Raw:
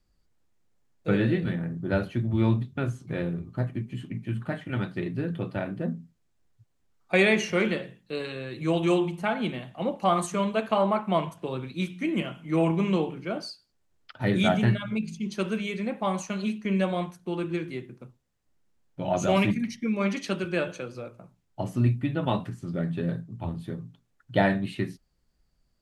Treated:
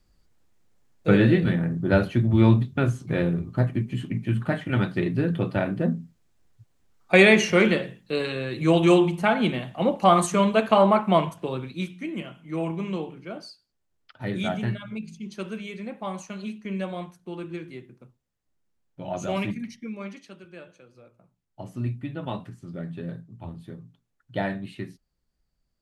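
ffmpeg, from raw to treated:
-af "volume=7.08,afade=t=out:st=11.01:d=1.08:silence=0.281838,afade=t=out:st=19.66:d=0.63:silence=0.266073,afade=t=in:st=20.85:d=1.09:silence=0.281838"

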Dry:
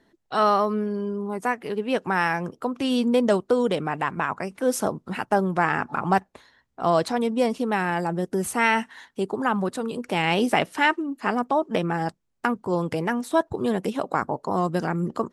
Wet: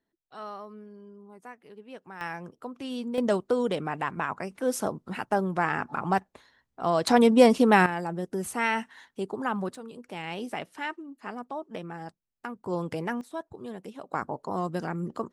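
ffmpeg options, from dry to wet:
-af "asetnsamples=n=441:p=0,asendcmd='2.21 volume volume -11.5dB;3.18 volume volume -4.5dB;7.07 volume volume 5.5dB;7.86 volume volume -6dB;9.75 volume volume -13.5dB;12.64 volume volume -6dB;13.21 volume volume -15dB;14.13 volume volume -6.5dB',volume=0.1"

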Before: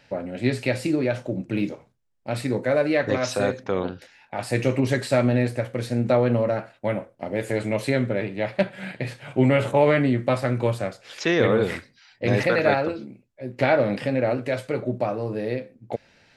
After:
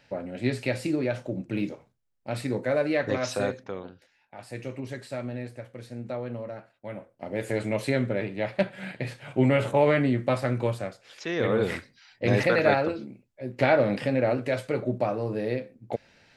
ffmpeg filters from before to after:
-af "volume=6.31,afade=t=out:st=3.41:d=0.41:silence=0.316228,afade=t=in:st=6.86:d=0.62:silence=0.281838,afade=t=out:st=10.53:d=0.74:silence=0.421697,afade=t=in:st=11.27:d=0.47:silence=0.354813"

